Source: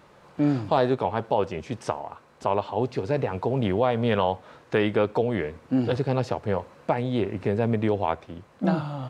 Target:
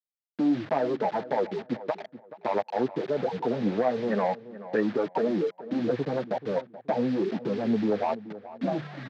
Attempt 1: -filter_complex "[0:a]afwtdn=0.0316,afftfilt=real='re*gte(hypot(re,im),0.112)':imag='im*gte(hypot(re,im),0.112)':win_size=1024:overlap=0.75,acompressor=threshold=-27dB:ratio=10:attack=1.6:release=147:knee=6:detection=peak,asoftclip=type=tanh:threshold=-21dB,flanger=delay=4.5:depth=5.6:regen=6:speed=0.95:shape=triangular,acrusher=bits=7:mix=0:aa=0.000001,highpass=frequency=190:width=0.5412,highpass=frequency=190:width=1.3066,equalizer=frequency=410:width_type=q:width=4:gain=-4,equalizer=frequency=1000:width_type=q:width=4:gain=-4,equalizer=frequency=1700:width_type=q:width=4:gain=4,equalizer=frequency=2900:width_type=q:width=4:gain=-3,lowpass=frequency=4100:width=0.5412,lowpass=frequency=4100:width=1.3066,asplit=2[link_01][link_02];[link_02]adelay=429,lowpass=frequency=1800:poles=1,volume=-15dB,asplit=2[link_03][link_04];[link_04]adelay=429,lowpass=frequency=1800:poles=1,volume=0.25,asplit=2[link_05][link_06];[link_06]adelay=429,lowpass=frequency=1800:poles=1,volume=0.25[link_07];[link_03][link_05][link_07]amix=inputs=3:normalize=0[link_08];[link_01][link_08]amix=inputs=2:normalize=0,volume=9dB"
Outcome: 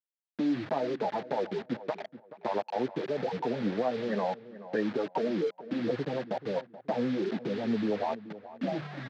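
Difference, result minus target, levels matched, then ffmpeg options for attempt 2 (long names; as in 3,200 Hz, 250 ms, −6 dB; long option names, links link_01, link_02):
downward compressor: peak gain reduction +6 dB
-filter_complex "[0:a]afwtdn=0.0316,afftfilt=real='re*gte(hypot(re,im),0.112)':imag='im*gte(hypot(re,im),0.112)':win_size=1024:overlap=0.75,acompressor=threshold=-20.5dB:ratio=10:attack=1.6:release=147:knee=6:detection=peak,asoftclip=type=tanh:threshold=-21dB,flanger=delay=4.5:depth=5.6:regen=6:speed=0.95:shape=triangular,acrusher=bits=7:mix=0:aa=0.000001,highpass=frequency=190:width=0.5412,highpass=frequency=190:width=1.3066,equalizer=frequency=410:width_type=q:width=4:gain=-4,equalizer=frequency=1000:width_type=q:width=4:gain=-4,equalizer=frequency=1700:width_type=q:width=4:gain=4,equalizer=frequency=2900:width_type=q:width=4:gain=-3,lowpass=frequency=4100:width=0.5412,lowpass=frequency=4100:width=1.3066,asplit=2[link_01][link_02];[link_02]adelay=429,lowpass=frequency=1800:poles=1,volume=-15dB,asplit=2[link_03][link_04];[link_04]adelay=429,lowpass=frequency=1800:poles=1,volume=0.25,asplit=2[link_05][link_06];[link_06]adelay=429,lowpass=frequency=1800:poles=1,volume=0.25[link_07];[link_03][link_05][link_07]amix=inputs=3:normalize=0[link_08];[link_01][link_08]amix=inputs=2:normalize=0,volume=9dB"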